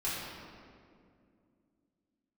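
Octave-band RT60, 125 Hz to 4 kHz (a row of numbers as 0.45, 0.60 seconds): 3.0, 3.5, 2.7, 2.0, 1.7, 1.3 seconds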